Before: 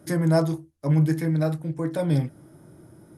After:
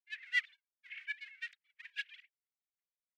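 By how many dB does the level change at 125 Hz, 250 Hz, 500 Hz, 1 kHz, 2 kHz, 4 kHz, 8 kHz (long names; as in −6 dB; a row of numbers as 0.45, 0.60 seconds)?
below −40 dB, below −40 dB, below −40 dB, below −30 dB, +2.0 dB, −2.5 dB, can't be measured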